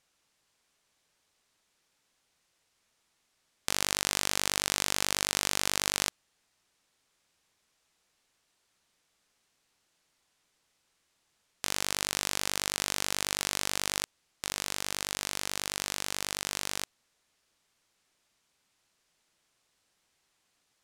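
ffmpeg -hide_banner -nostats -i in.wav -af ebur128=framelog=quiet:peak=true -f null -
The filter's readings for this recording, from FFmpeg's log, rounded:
Integrated loudness:
  I:         -30.8 LUFS
  Threshold: -40.9 LUFS
Loudness range:
  LRA:        10.4 LU
  Threshold: -53.0 LUFS
  LRA low:   -40.0 LUFS
  LRA high:  -29.5 LUFS
True peak:
  Peak:       -3.9 dBFS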